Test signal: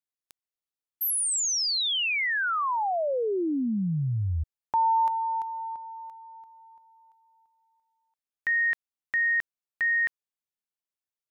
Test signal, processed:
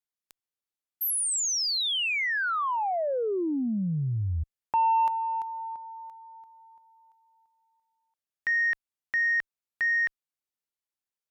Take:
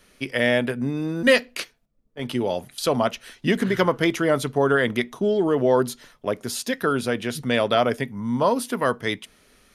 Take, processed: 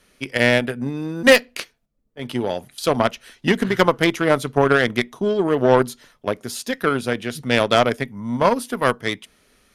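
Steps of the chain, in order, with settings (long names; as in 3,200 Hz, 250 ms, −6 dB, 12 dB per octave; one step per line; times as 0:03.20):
harmonic generator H 3 −12 dB, 5 −39 dB, 7 −41 dB, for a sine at −5.5 dBFS
sine wavefolder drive 6 dB, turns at −2.5 dBFS
level +1 dB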